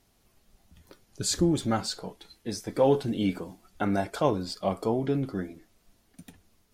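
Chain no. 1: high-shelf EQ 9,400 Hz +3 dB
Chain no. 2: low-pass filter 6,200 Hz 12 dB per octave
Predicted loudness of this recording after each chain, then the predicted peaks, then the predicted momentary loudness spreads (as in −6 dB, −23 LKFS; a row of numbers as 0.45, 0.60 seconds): −28.5, −28.5 LKFS; −10.5, −10.5 dBFS; 15, 15 LU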